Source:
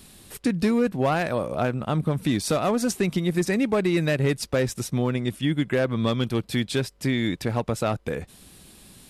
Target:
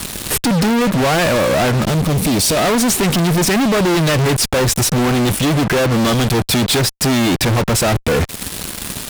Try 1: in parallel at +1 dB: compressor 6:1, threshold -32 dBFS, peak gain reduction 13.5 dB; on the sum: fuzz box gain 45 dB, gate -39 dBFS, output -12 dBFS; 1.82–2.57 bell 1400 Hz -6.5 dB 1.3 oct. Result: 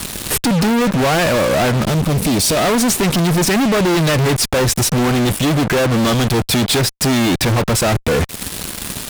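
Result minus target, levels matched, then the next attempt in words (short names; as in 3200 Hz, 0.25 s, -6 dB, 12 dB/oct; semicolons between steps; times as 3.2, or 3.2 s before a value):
compressor: peak gain reduction +6 dB
in parallel at +1 dB: compressor 6:1, threshold -24.5 dBFS, peak gain reduction 7 dB; on the sum: fuzz box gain 45 dB, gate -39 dBFS, output -12 dBFS; 1.82–2.57 bell 1400 Hz -6.5 dB 1.3 oct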